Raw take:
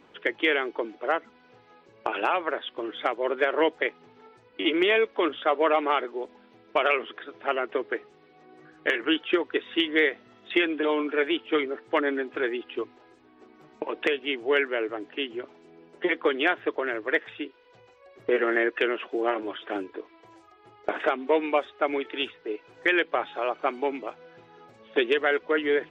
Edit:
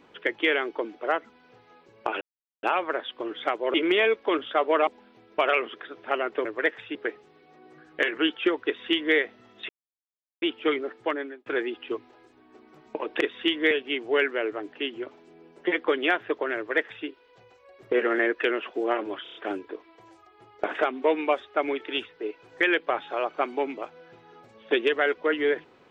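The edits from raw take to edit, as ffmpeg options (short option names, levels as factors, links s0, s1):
-filter_complex "[0:a]asplit=15[s0][s1][s2][s3][s4][s5][s6][s7][s8][s9][s10][s11][s12][s13][s14];[s0]atrim=end=2.21,asetpts=PTS-STARTPTS,afade=t=out:st=2.206:d=0.004:c=hsin,apad=pad_dur=0.42[s15];[s1]atrim=start=2.21:end=3.322,asetpts=PTS-STARTPTS,afade=t=in:d=0.004:c=hsin[s16];[s2]atrim=start=4.648:end=5.782[s17];[s3]atrim=start=6.238:end=7.822[s18];[s4]atrim=start=16.938:end=17.442[s19];[s5]atrim=start=7.818:end=10.56,asetpts=PTS-STARTPTS,afade=t=out:st=2.738:d=0.004:c=hsin[s20];[s6]atrim=start=10.56:end=11.29,asetpts=PTS-STARTPTS,volume=0[s21];[s7]atrim=start=11.29:end=12.33,asetpts=PTS-STARTPTS,afade=t=in:d=0.004:c=hsin,afade=t=out:st=0.5:d=0.54[s22];[s8]atrim=start=12.33:end=14.082,asetpts=PTS-STARTPTS,afade=t=in:d=0.004:c=hsin[s23];[s9]atrim=start=9.528:end=10.032[s24];[s10]atrim=start=14.078:end=19.632[s25];[s11]atrim=start=19.598:end=19.632[s26];[s12]atrim=start=19.598:end=19.632[s27];[s13]atrim=start=19.598:end=19.632[s28];[s14]atrim=start=19.598[s29];[s15][s16]concat=n=2:v=0:a=1[s30];[s30][s17]acrossfade=d=0.004:c1=hsin:c2=hsin[s31];[s31][s18]acrossfade=d=0.004:c1=hsin:c2=hsin[s32];[s32][s19]acrossfade=d=0.004:c1=hsin:c2=hsin[s33];[s20][s21][s22][s23]concat=n=4:v=0:a=1[s34];[s33][s34]acrossfade=d=0.004:c1=hsin:c2=hsin[s35];[s35][s24]acrossfade=d=0.004:c1=hsin:c2=hsin[s36];[s36][s25]acrossfade=d=0.004:c1=hsin:c2=hsin[s37];[s37][s26]acrossfade=d=0.004:c1=hsin:c2=hsin[s38];[s38][s27]acrossfade=d=0.004:c1=hsin:c2=hsin[s39];[s39][s28]acrossfade=d=0.004:c1=hsin:c2=hsin[s40];[s40][s29]acrossfade=d=0.004:c1=hsin:c2=hsin"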